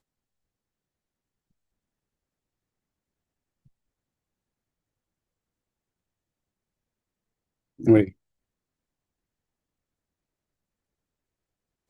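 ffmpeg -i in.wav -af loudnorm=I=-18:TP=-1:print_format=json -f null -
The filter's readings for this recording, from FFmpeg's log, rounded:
"input_i" : "-21.5",
"input_tp" : "-6.5",
"input_lra" : "11.9",
"input_thresh" : "-34.5",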